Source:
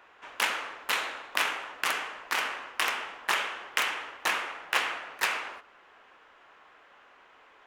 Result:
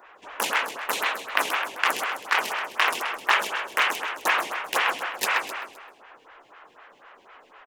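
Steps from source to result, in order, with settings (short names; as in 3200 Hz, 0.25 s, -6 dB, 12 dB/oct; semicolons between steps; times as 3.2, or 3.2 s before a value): feedback echo 0.13 s, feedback 45%, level -6 dB; photocell phaser 4 Hz; gain +8 dB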